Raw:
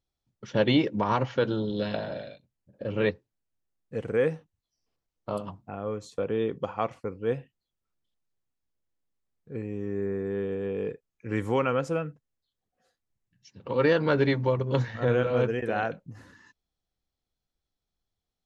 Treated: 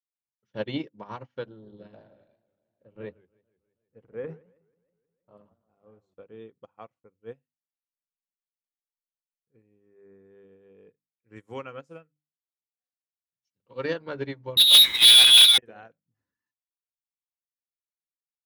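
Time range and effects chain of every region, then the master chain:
1.46–6.14 LPF 1200 Hz 6 dB/oct + transient shaper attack 0 dB, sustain +9 dB + warbling echo 0.159 s, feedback 70%, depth 209 cents, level -10.5 dB
11.36–13.94 HPF 55 Hz + high shelf 3200 Hz +7.5 dB + notch 880 Hz, Q 26
14.57–15.58 inverted band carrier 3900 Hz + sample leveller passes 5
whole clip: notches 50/100/150/200/250/300 Hz; upward expander 2.5:1, over -39 dBFS; gain +2.5 dB

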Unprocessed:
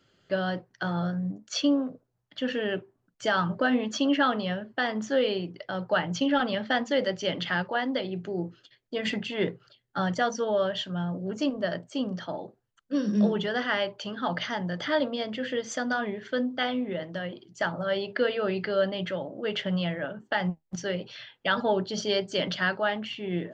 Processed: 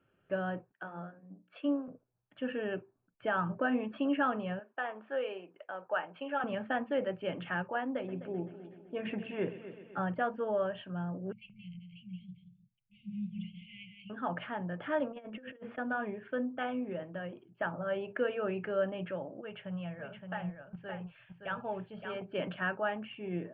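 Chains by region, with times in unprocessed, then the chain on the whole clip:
0.72–1.88 HPF 190 Hz + notches 60/120/180/240/300/360/420/480/540/600 Hz + upward expander, over -37 dBFS
4.59–6.44 HPF 530 Hz + high shelf 4700 Hz -6 dB + notch 2000 Hz, Q 29
7.83–10.03 bell 3000 Hz -3 dB 0.3 oct + multi-head echo 0.128 s, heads first and second, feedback 56%, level -15.5 dB
11.32–14.1 brick-wall FIR band-stop 200–2000 Hz + high shelf 2900 Hz -6.5 dB + echo 0.177 s -6 dB
15.11–15.78 LPF 2700 Hz + notches 60/120/180/240/300/360/420/480/540 Hz + negative-ratio compressor -38 dBFS, ratio -0.5
19.41–22.22 EQ curve 140 Hz 0 dB, 290 Hz -12 dB, 710 Hz -5 dB + echo 0.568 s -6 dB
whole clip: elliptic low-pass 2600 Hz, stop band 60 dB; notch 2000 Hz, Q 6.1; gain -5.5 dB

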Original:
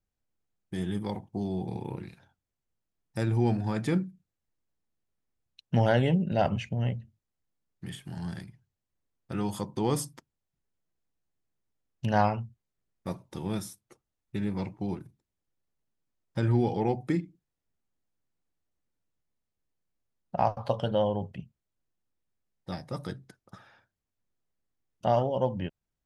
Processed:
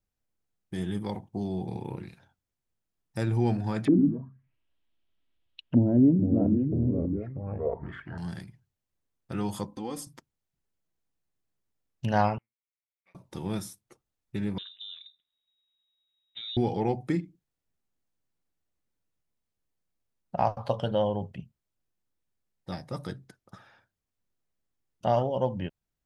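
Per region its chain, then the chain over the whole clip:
3.85–8.18 comb 3.1 ms, depth 44% + echoes that change speed 96 ms, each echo -3 st, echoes 2, each echo -6 dB + envelope low-pass 280–3300 Hz down, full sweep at -26 dBFS
9.67–10.07 expander -51 dBFS + comb 3.8 ms, depth 80% + compressor 1.5:1, threshold -49 dBFS
12.38–13.15 half-wave gain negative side -12 dB + band-pass 2200 Hz, Q 11
14.58–16.57 compressor 2.5:1, threshold -44 dBFS + inverted band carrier 3800 Hz
whole clip: dry

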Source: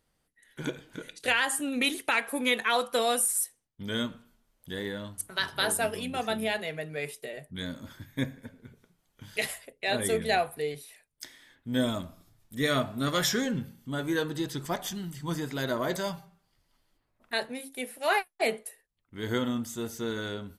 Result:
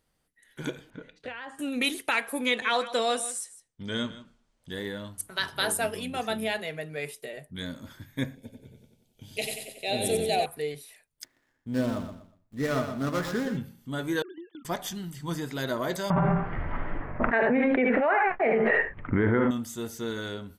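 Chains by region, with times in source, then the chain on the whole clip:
0.9–1.59 notch 350 Hz, Q 5.8 + compressor 4:1, threshold -30 dBFS + tape spacing loss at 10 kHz 32 dB
2.46–4.71 LPF 8200 Hz 24 dB/oct + echo 0.157 s -15.5 dB
8.35–10.46 band shelf 1400 Hz -14.5 dB 1.2 oct + feedback echo 92 ms, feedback 52%, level -5 dB
11.24–13.57 median filter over 15 samples + gate -52 dBFS, range -11 dB + feedback echo 0.121 s, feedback 28%, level -8.5 dB
14.22–14.65 sine-wave speech + gate -45 dBFS, range -15 dB + compressor 10:1, threshold -39 dBFS
16.1–19.51 steep low-pass 2100 Hz + tapped delay 61/74 ms -10.5/-8 dB + fast leveller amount 100%
whole clip: dry

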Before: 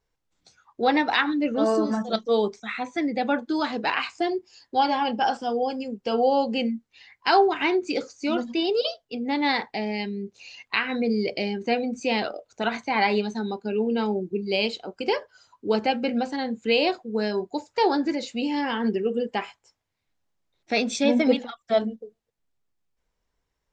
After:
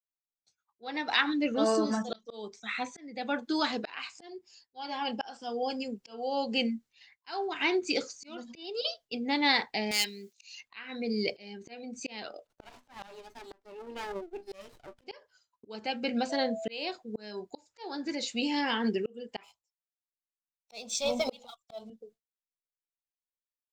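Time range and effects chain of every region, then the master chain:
9.91–10.61 hard clip -23.5 dBFS + expander -49 dBFS + tilt +4.5 dB/oct
12.47–15.07 rippled Chebyshev high-pass 240 Hz, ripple 9 dB + small resonant body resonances 590/1700 Hz, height 12 dB, ringing for 70 ms + running maximum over 17 samples
16.29–16.69 bell 570 Hz +14 dB 0.27 oct + whine 660 Hz -31 dBFS
19.43–21.9 sample leveller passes 1 + fixed phaser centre 720 Hz, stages 4
whole clip: expander -43 dBFS; high shelf 2300 Hz +10 dB; auto swell 0.545 s; gain -5 dB

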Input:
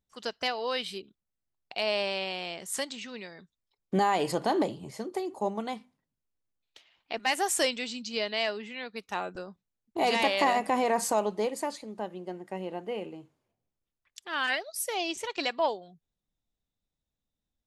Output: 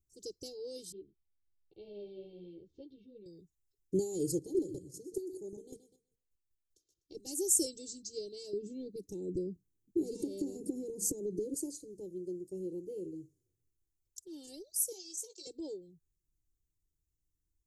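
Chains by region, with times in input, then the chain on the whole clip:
0.92–3.26 steep low-pass 3400 Hz 48 dB/oct + ensemble effect
4.35–7.15 thinning echo 0.125 s, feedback 28%, high-pass 230 Hz, level -8.5 dB + chopper 5.1 Hz, depth 60%, duty 20%
8.53–11.54 bell 230 Hz +14.5 dB 2.2 oct + compressor, threshold -27 dBFS
14.92–15.47 HPF 610 Hz 24 dB/oct + doubler 16 ms -8 dB
whole clip: elliptic band-stop 330–6400 Hz, stop band 70 dB; band shelf 1600 Hz +14.5 dB 1 oct; comb 2.2 ms, depth 98%

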